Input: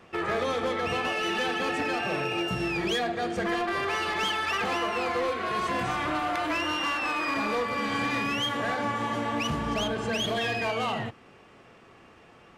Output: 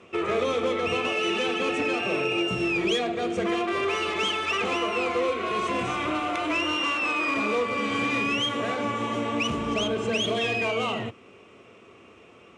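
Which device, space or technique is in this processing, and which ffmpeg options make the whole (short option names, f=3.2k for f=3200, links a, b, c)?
car door speaker: -af "highpass=84,equalizer=f=150:t=q:w=4:g=-8,equalizer=f=410:t=q:w=4:g=4,equalizer=f=820:t=q:w=4:g=-8,equalizer=f=1.7k:t=q:w=4:g=-10,equalizer=f=2.5k:t=q:w=4:g=4,equalizer=f=4.6k:t=q:w=4:g=-8,lowpass=f=9k:w=0.5412,lowpass=f=9k:w=1.3066,volume=3dB"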